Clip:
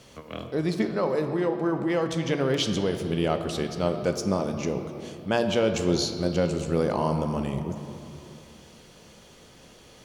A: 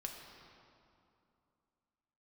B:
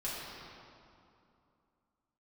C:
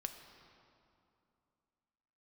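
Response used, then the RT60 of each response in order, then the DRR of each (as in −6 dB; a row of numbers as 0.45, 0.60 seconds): C; 2.7, 2.7, 2.7 seconds; 1.0, −9.0, 5.5 decibels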